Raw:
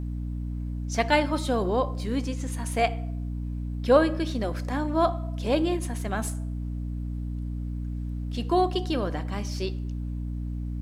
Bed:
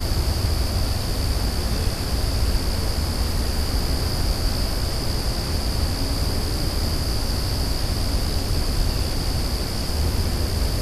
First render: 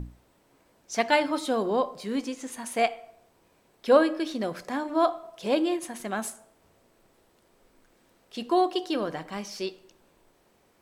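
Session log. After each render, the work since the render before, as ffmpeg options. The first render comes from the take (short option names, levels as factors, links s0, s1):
-af "bandreject=f=60:t=h:w=6,bandreject=f=120:t=h:w=6,bandreject=f=180:t=h:w=6,bandreject=f=240:t=h:w=6,bandreject=f=300:t=h:w=6"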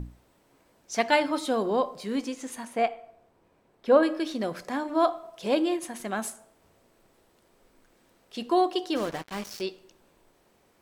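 -filter_complex "[0:a]asettb=1/sr,asplit=3[s0][s1][s2];[s0]atrim=end=2.654[s3];[s1]atrim=start=2.65:end=4.03,asetpts=PTS-STARTPTS,afade=t=in:d=0.004:c=qsin,afade=t=out:st=1.376:d=0.004:c=qsin,highshelf=f=2700:g=-12[s4];[s2]atrim=start=4.026[s5];[s3][s4]acrossfade=d=0.004:c1=hsin:c2=qsin[s6];[s6][s5]acrossfade=d=0.004:c1=qsin:c2=hsin,asplit=3[s7][s8][s9];[s7]afade=t=out:st=8.95:d=0.02[s10];[s8]acrusher=bits=5:mix=0:aa=0.5,afade=t=in:st=8.95:d=0.02,afade=t=out:st=9.6:d=0.02[s11];[s9]afade=t=in:st=9.6:d=0.02[s12];[s10][s11][s12]amix=inputs=3:normalize=0"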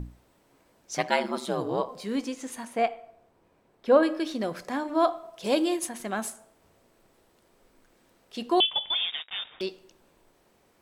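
-filter_complex "[0:a]asettb=1/sr,asplit=3[s0][s1][s2];[s0]atrim=end=0.974[s3];[s1]atrim=start=0.97:end=1.89,asetpts=PTS-STARTPTS,afade=t=in:d=0.004:c=qsin,afade=t=out:st=0.916:d=0.004:c=qsin,aeval=exprs='val(0)*sin(2*PI*67*n/s)':c=same[s4];[s2]atrim=start=1.886[s5];[s3][s4]acrossfade=d=0.004:c1=hsin:c2=qsin[s6];[s6][s5]acrossfade=d=0.004:c1=qsin:c2=hsin,asettb=1/sr,asplit=3[s7][s8][s9];[s7]atrim=end=5.444[s10];[s8]atrim=start=5.44:end=5.89,asetpts=PTS-STARTPTS,afade=t=in:d=0.004:c=qsin,afade=t=out:st=0.446:d=0.004:c=qsin,bass=f=250:g=0,treble=f=4000:g=8[s11];[s9]atrim=start=5.886[s12];[s10][s11]acrossfade=d=0.004:c1=hsin:c2=qsin[s13];[s13][s12]acrossfade=d=0.004:c1=qsin:c2=hsin,asettb=1/sr,asplit=3[s14][s15][s16];[s14]atrim=end=8.604[s17];[s15]atrim=start=8.6:end=9.61,asetpts=PTS-STARTPTS,afade=t=in:d=0.004:c=qsin,afade=t=out:st=1.006:d=0.004:c=qsin,lowpass=f=3200:t=q:w=0.5098,lowpass=f=3200:t=q:w=0.6013,lowpass=f=3200:t=q:w=0.9,lowpass=f=3200:t=q:w=2.563,afreqshift=-3800[s18];[s16]atrim=start=9.606[s19];[s17][s18]acrossfade=d=0.004:c1=hsin:c2=qsin[s20];[s20][s19]acrossfade=d=0.004:c1=qsin:c2=hsin"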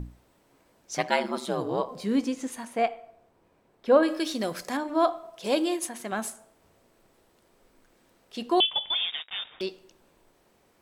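-filter_complex "[0:a]asettb=1/sr,asplit=3[s0][s1][s2];[s0]atrim=end=1.914[s3];[s1]atrim=start=1.91:end=2.48,asetpts=PTS-STARTPTS,afade=t=in:d=0.004:c=qsin,afade=t=out:st=0.566:d=0.004:c=qsin,equalizer=f=130:t=o:w=2.9:g=7[s4];[s2]atrim=start=2.476[s5];[s3][s4]acrossfade=d=0.004:c1=hsin:c2=qsin[s6];[s6][s5]acrossfade=d=0.004:c1=qsin:c2=hsin,asettb=1/sr,asplit=3[s7][s8][s9];[s7]atrim=end=4.084[s10];[s8]atrim=start=4.08:end=4.77,asetpts=PTS-STARTPTS,afade=t=in:d=0.004:c=qsin,afade=t=out:st=0.686:d=0.004:c=qsin,highshelf=f=3600:g=10.5[s11];[s9]atrim=start=4.766[s12];[s10][s11]acrossfade=d=0.004:c1=hsin:c2=qsin[s13];[s13][s12]acrossfade=d=0.004:c1=qsin:c2=hsin,asettb=1/sr,asplit=3[s14][s15][s16];[s14]atrim=end=5.404[s17];[s15]atrim=start=5.4:end=6.12,asetpts=PTS-STARTPTS,afade=t=in:d=0.004:c=qsin,afade=t=out:st=0.716:d=0.004:c=qsin,highpass=f=180:p=1[s18];[s16]atrim=start=6.116[s19];[s17][s18]acrossfade=d=0.004:c1=hsin:c2=qsin[s20];[s20][s19]acrossfade=d=0.004:c1=qsin:c2=hsin"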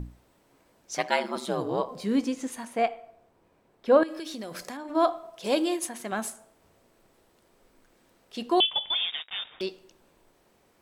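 -filter_complex "[0:a]asettb=1/sr,asplit=3[s0][s1][s2];[s0]atrim=end=0.954[s3];[s1]atrim=start=0.95:end=1.36,asetpts=PTS-STARTPTS,afade=t=in:d=0.004:c=qsin,afade=t=out:st=0.406:d=0.004:c=qsin,highpass=f=290:p=1[s4];[s2]atrim=start=1.356[s5];[s3][s4]acrossfade=d=0.004:c1=hsin:c2=qsin[s6];[s6][s5]acrossfade=d=0.004:c1=qsin:c2=hsin,asettb=1/sr,asplit=3[s7][s8][s9];[s7]atrim=end=4.034[s10];[s8]atrim=start=4.03:end=4.95,asetpts=PTS-STARTPTS,afade=t=in:d=0.004:c=qsin,afade=t=out:st=0.916:d=0.004:c=qsin,acompressor=threshold=0.0224:ratio=12:attack=3.2:release=140:knee=1:detection=peak[s11];[s9]atrim=start=4.946[s12];[s10][s11]acrossfade=d=0.004:c1=hsin:c2=qsin[s13];[s13][s12]acrossfade=d=0.004:c1=qsin:c2=hsin"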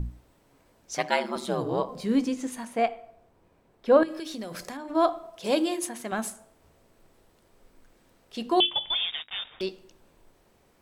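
-af "lowshelf=f=140:g=9,bandreject=f=50:t=h:w=6,bandreject=f=100:t=h:w=6,bandreject=f=150:t=h:w=6,bandreject=f=200:t=h:w=6,bandreject=f=250:t=h:w=6,bandreject=f=300:t=h:w=6,bandreject=f=350:t=h:w=6"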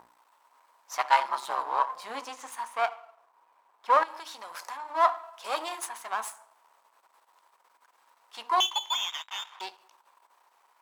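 -af "aeval=exprs='if(lt(val(0),0),0.251*val(0),val(0))':c=same,highpass=f=970:t=q:w=4.9"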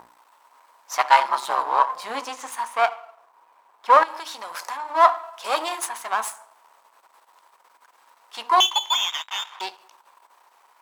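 -af "volume=2.37,alimiter=limit=0.891:level=0:latency=1"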